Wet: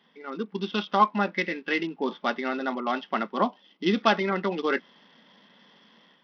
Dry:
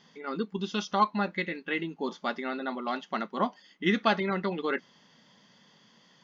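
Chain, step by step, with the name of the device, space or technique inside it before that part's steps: 3.43–4.02 bell 1800 Hz -11.5 dB 0.66 oct; Bluetooth headset (HPF 190 Hz 24 dB/oct; AGC gain up to 7 dB; downsampling 8000 Hz; gain -2.5 dB; SBC 64 kbps 44100 Hz)

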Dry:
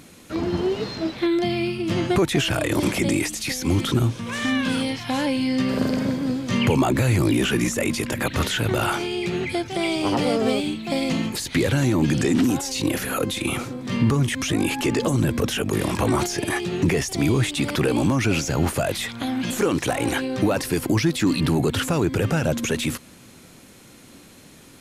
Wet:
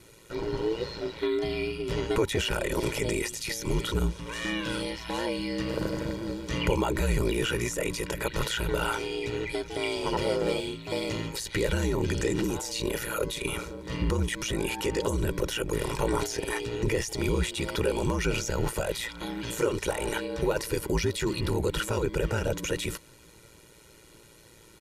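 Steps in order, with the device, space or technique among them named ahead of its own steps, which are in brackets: ring-modulated robot voice (ring modulator 57 Hz; comb 2.1 ms, depth 65%); gain -4.5 dB

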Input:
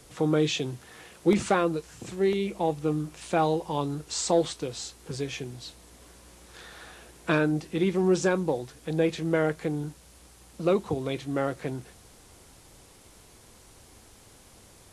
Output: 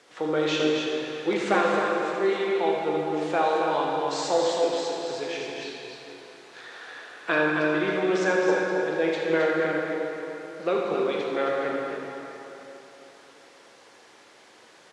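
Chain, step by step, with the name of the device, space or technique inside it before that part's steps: station announcement (BPF 400–4700 Hz; bell 1700 Hz +5 dB 0.42 oct; loudspeakers at several distances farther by 27 m -9 dB, 92 m -6 dB; reverb RT60 3.6 s, pre-delay 17 ms, DRR -1 dB)

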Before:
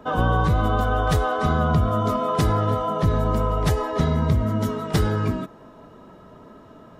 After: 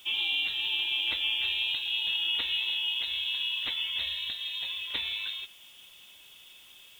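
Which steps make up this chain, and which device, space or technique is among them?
scrambled radio voice (BPF 380–2900 Hz; inverted band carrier 3900 Hz; white noise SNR 27 dB); gain -5 dB

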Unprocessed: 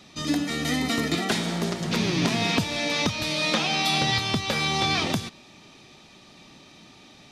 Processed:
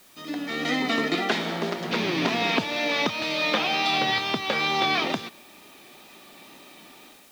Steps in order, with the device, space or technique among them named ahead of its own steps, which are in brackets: dictaphone (BPF 290–3500 Hz; AGC gain up to 11 dB; wow and flutter 26 cents; white noise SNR 28 dB); gain -7 dB

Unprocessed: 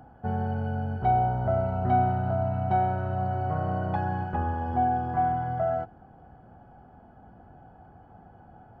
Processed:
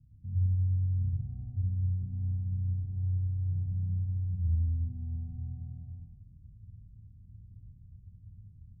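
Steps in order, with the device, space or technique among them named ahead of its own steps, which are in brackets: club heard from the street (limiter -22 dBFS, peak gain reduction 9.5 dB; LPF 140 Hz 24 dB/oct; reverb RT60 0.95 s, pre-delay 95 ms, DRR -6.5 dB); gain -3.5 dB

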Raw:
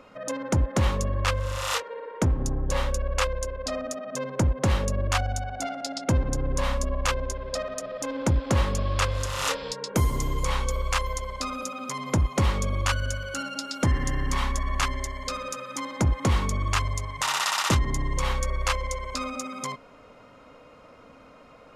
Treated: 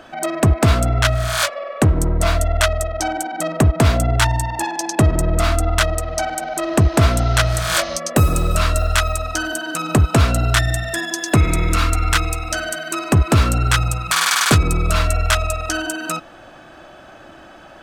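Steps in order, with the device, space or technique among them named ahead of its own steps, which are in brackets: nightcore (varispeed +22%); gain +9 dB

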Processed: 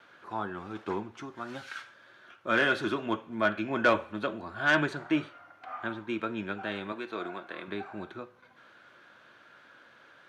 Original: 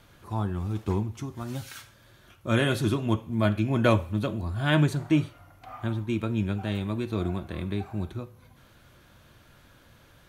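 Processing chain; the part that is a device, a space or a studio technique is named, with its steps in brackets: intercom (BPF 340–3500 Hz; bell 1500 Hz +8 dB 0.52 oct; soft clip -13.5 dBFS, distortion -19 dB); 6.92–7.68 HPF 420 Hz 6 dB/oct; gate with hold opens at -52 dBFS; high shelf 7500 Hz +6 dB

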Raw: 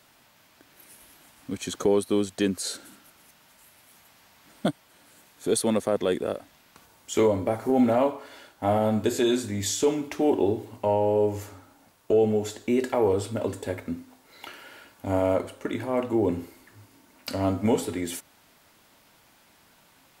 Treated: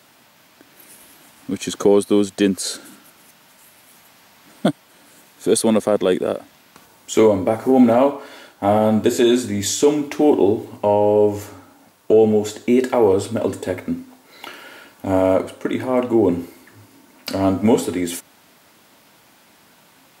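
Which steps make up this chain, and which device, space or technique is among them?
filter by subtraction (in parallel: LPF 210 Hz 12 dB/oct + phase invert); on the sum: gain +6.5 dB

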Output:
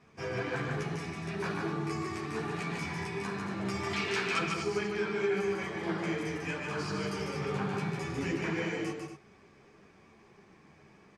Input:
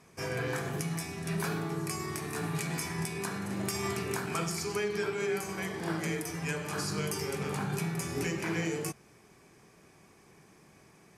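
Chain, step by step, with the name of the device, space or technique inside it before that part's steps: string-machine ensemble chorus (ensemble effect; LPF 4100 Hz 12 dB/oct); 3.93–4.39 weighting filter D; loudspeakers at several distances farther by 51 m -4 dB, 81 m -10 dB; gain +2 dB

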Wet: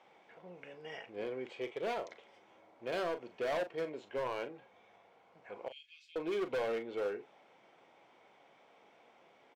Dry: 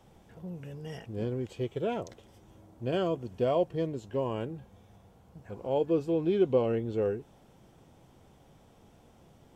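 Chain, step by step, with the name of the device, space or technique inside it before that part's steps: 5.68–6.16 inverse Chebyshev band-stop 150–930 Hz, stop band 60 dB; megaphone (BPF 560–3400 Hz; bell 2200 Hz +10 dB 0.24 oct; hard clip -33 dBFS, distortion -8 dB; doubler 39 ms -11 dB); gain +1 dB

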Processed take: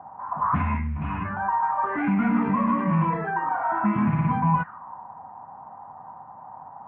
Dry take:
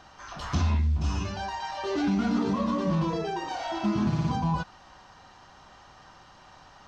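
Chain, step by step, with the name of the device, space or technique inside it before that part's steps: envelope filter bass rig (envelope low-pass 770–2300 Hz up, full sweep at -23.5 dBFS; speaker cabinet 88–2100 Hz, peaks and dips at 160 Hz +3 dB, 230 Hz +4 dB, 370 Hz -10 dB, 560 Hz -4 dB, 1000 Hz +7 dB); gain +1.5 dB

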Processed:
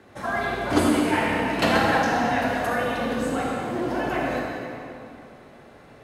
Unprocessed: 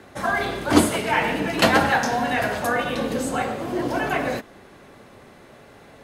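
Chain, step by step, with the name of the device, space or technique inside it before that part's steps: swimming-pool hall (reverb RT60 2.6 s, pre-delay 37 ms, DRR -1.5 dB; high shelf 4900 Hz -5 dB); gain -5.5 dB

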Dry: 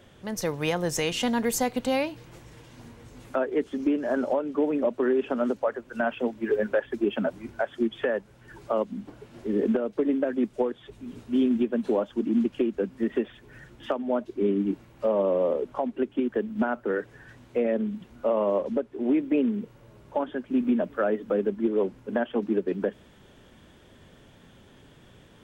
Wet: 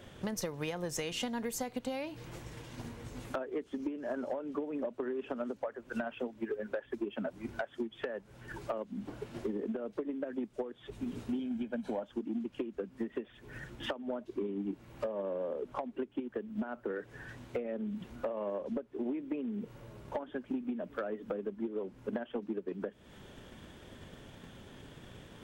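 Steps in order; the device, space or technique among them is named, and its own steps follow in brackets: 11.39–12.03 comb 1.3 ms, depth 64%; drum-bus smash (transient shaper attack +7 dB, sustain +1 dB; compressor 12:1, threshold -33 dBFS, peak gain reduction 20 dB; soft clip -26 dBFS, distortion -19 dB); gain +1 dB

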